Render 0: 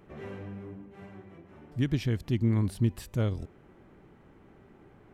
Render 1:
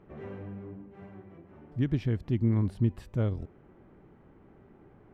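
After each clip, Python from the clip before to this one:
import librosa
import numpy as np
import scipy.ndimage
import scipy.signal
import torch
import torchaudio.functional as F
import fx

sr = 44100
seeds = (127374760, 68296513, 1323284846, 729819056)

y = fx.lowpass(x, sr, hz=1400.0, slope=6)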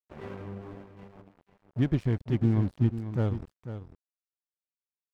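y = fx.rider(x, sr, range_db=3, speed_s=2.0)
y = np.sign(y) * np.maximum(np.abs(y) - 10.0 ** (-42.5 / 20.0), 0.0)
y = y + 10.0 ** (-11.0 / 20.0) * np.pad(y, (int(496 * sr / 1000.0), 0))[:len(y)]
y = F.gain(torch.from_numpy(y), 2.5).numpy()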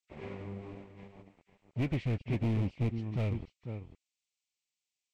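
y = fx.freq_compress(x, sr, knee_hz=1200.0, ratio=1.5)
y = np.clip(10.0 ** (24.5 / 20.0) * y, -1.0, 1.0) / 10.0 ** (24.5 / 20.0)
y = fx.high_shelf_res(y, sr, hz=1900.0, db=6.5, q=3.0)
y = F.gain(torch.from_numpy(y), -2.0).numpy()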